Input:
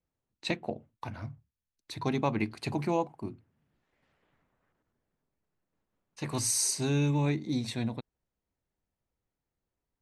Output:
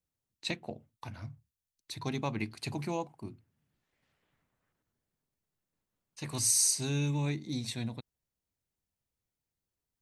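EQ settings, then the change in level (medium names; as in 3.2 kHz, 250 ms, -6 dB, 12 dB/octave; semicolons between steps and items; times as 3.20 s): peaking EQ 110 Hz +5 dB 1.9 oct; treble shelf 2.6 kHz +11 dB; -7.5 dB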